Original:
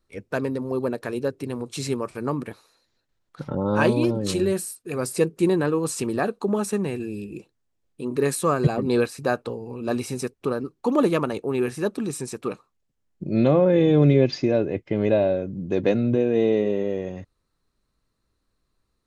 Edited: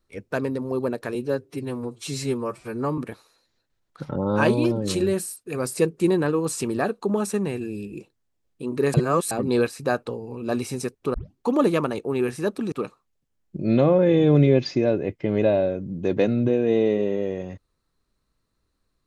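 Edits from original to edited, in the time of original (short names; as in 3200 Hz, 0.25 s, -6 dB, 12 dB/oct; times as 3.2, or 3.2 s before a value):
1.15–2.37 stretch 1.5×
8.33–8.7 reverse
10.53 tape start 0.25 s
12.11–12.39 cut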